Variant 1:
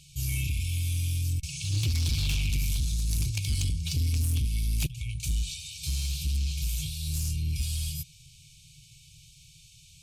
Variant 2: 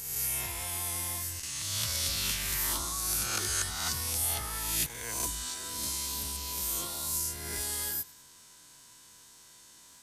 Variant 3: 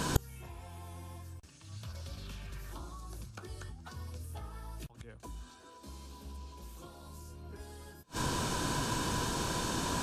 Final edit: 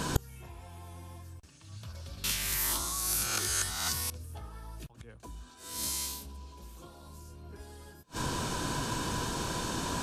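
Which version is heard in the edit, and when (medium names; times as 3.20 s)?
3
2.24–4.10 s: from 2
5.68–6.15 s: from 2, crossfade 0.24 s
not used: 1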